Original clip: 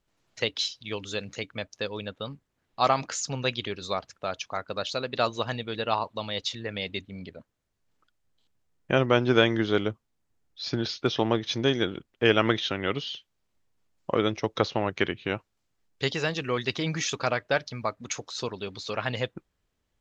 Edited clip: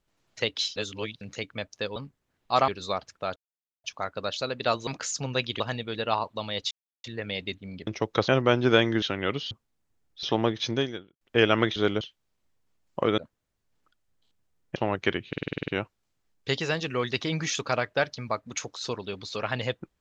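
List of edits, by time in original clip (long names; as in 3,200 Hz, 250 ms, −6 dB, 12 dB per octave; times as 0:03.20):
0:00.76–0:01.21: reverse
0:01.96–0:02.24: remove
0:02.96–0:03.69: move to 0:05.40
0:04.37: splice in silence 0.48 s
0:06.51: splice in silence 0.33 s
0:07.34–0:08.92: swap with 0:14.29–0:14.70
0:09.66–0:09.91: swap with 0:12.63–0:13.12
0:10.63–0:11.10: remove
0:11.60–0:12.08: fade out quadratic
0:15.22: stutter 0.05 s, 9 plays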